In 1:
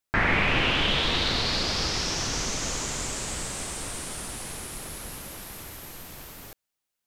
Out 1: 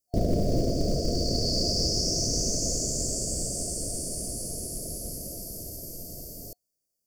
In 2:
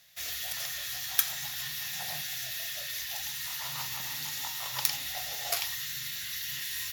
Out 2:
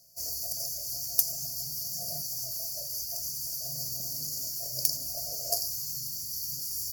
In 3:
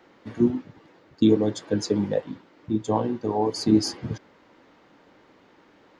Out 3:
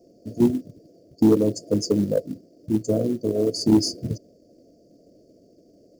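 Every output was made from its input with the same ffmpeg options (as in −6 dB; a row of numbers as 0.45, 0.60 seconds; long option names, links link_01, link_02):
-af "afftfilt=real='re*(1-between(b*sr/4096,720,4400))':imag='im*(1-between(b*sr/4096,720,4400))':win_size=4096:overlap=0.75,aeval=exprs='0.631*(cos(1*acos(clip(val(0)/0.631,-1,1)))-cos(1*PI/2))+0.00891*(cos(3*acos(clip(val(0)/0.631,-1,1)))-cos(3*PI/2))+0.0631*(cos(5*acos(clip(val(0)/0.631,-1,1)))-cos(5*PI/2))':channel_layout=same,acrusher=bits=7:mode=log:mix=0:aa=0.000001"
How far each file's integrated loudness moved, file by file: −1.5, +1.5, +2.0 LU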